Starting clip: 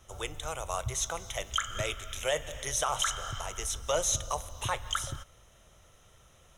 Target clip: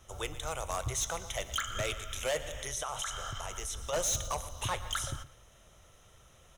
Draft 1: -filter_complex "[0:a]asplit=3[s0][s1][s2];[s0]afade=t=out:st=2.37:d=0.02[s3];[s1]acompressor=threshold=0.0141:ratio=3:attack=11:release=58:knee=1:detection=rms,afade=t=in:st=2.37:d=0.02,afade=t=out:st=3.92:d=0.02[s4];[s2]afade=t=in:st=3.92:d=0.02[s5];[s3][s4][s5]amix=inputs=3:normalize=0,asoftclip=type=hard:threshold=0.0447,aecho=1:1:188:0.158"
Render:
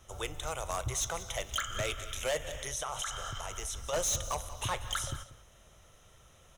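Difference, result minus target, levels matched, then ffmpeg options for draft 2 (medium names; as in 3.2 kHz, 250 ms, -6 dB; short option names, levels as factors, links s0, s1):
echo 70 ms late
-filter_complex "[0:a]asplit=3[s0][s1][s2];[s0]afade=t=out:st=2.37:d=0.02[s3];[s1]acompressor=threshold=0.0141:ratio=3:attack=11:release=58:knee=1:detection=rms,afade=t=in:st=2.37:d=0.02,afade=t=out:st=3.92:d=0.02[s4];[s2]afade=t=in:st=3.92:d=0.02[s5];[s3][s4][s5]amix=inputs=3:normalize=0,asoftclip=type=hard:threshold=0.0447,aecho=1:1:118:0.158"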